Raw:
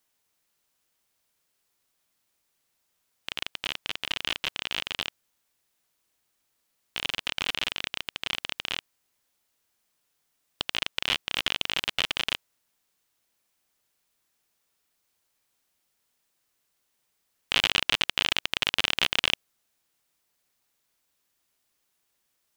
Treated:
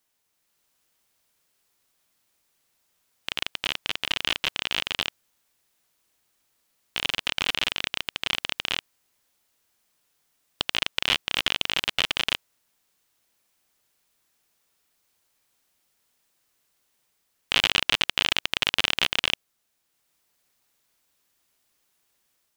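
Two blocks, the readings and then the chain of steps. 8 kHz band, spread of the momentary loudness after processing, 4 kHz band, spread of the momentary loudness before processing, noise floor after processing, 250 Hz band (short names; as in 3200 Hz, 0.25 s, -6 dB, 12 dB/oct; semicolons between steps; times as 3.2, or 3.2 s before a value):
+2.5 dB, 8 LU, +2.5 dB, 10 LU, -74 dBFS, +2.5 dB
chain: AGC gain up to 4 dB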